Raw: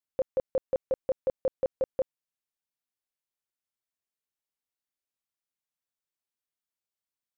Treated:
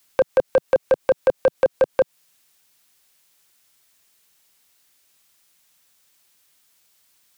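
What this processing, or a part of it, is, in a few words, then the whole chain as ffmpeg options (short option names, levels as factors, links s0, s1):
mastering chain: -filter_complex "[0:a]equalizer=f=160:t=o:w=0.81:g=2.5,acrossover=split=340|890[s0][s1][s2];[s0]acompressor=threshold=0.00398:ratio=4[s3];[s1]acompressor=threshold=0.0316:ratio=4[s4];[s2]acompressor=threshold=0.00282:ratio=4[s5];[s3][s4][s5]amix=inputs=3:normalize=0,acompressor=threshold=0.0224:ratio=2.5,asoftclip=type=tanh:threshold=0.0422,tiltshelf=f=1400:g=-4,alimiter=level_in=56.2:limit=0.891:release=50:level=0:latency=1,volume=0.398"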